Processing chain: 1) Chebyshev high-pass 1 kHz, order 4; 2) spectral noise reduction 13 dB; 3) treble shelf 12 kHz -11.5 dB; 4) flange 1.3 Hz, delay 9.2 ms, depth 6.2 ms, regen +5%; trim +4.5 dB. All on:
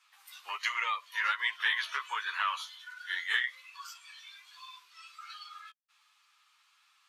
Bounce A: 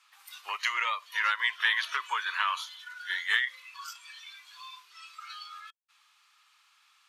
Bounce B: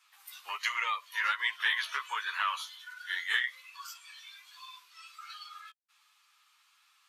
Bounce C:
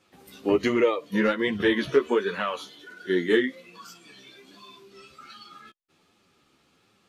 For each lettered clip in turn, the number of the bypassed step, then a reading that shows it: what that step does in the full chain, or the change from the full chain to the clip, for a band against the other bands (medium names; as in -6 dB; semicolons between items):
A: 4, loudness change +3.0 LU; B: 3, 8 kHz band +2.0 dB; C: 1, 500 Hz band +36.0 dB